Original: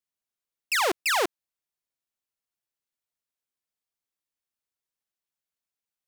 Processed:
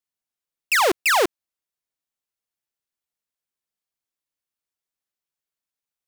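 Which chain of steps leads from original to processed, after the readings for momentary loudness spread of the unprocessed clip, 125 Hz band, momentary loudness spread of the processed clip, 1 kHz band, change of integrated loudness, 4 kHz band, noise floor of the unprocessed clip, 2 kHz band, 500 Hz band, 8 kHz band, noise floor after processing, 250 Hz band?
5 LU, can't be measured, 5 LU, +6.5 dB, +6.0 dB, +3.5 dB, below −85 dBFS, +6.0 dB, +7.0 dB, +4.5 dB, below −85 dBFS, +7.0 dB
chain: leveller curve on the samples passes 2
level +4 dB

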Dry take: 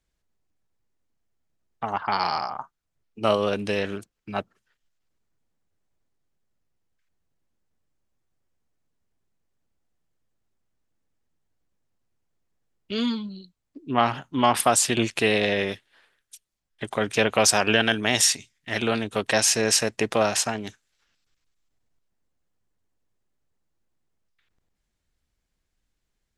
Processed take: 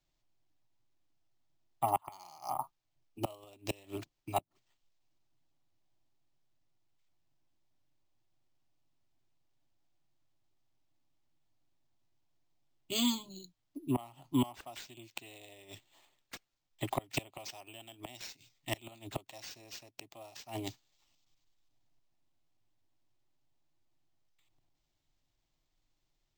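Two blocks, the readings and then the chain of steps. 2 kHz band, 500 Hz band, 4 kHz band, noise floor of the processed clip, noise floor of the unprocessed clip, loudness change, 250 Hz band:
−22.0 dB, −19.0 dB, −15.5 dB, −81 dBFS, −79 dBFS, −16.0 dB, −11.0 dB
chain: dynamic equaliser 3,100 Hz, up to +3 dB, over −35 dBFS, Q 0.85
gate with flip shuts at −13 dBFS, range −27 dB
phaser with its sweep stopped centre 310 Hz, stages 8
bad sample-rate conversion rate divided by 4×, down none, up hold

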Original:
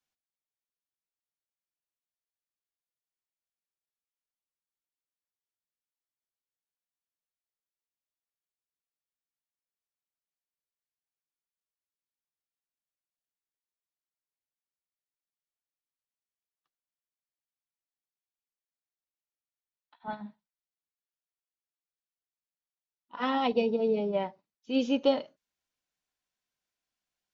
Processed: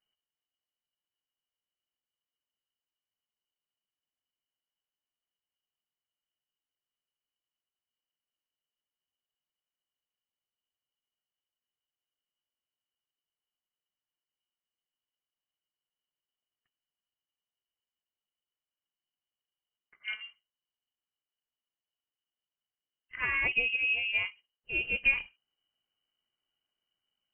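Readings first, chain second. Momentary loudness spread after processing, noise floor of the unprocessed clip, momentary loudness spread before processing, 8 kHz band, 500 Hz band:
17 LU, below −85 dBFS, 16 LU, can't be measured, −20.5 dB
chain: low shelf with overshoot 160 Hz +13.5 dB, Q 3
voice inversion scrambler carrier 3,000 Hz

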